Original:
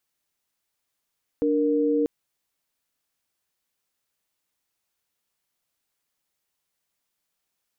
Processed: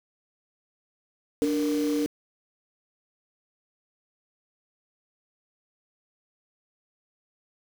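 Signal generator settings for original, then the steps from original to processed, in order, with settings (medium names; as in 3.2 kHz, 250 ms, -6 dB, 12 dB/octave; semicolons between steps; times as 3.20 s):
chord D4/A#4 sine, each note -22 dBFS 0.64 s
low-pass that closes with the level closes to 330 Hz; word length cut 6-bit, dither none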